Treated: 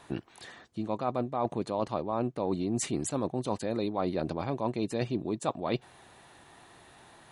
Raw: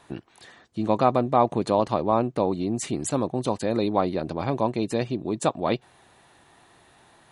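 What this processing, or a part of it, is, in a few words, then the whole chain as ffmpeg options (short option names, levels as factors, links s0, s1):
compression on the reversed sound: -af "areverse,acompressor=threshold=0.0447:ratio=10,areverse,volume=1.12"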